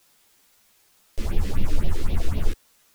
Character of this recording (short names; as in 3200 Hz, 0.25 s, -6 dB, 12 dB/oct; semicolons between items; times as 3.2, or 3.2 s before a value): phasing stages 4, 3.9 Hz, lowest notch 120–1500 Hz; a quantiser's noise floor 10-bit, dither triangular; a shimmering, thickened sound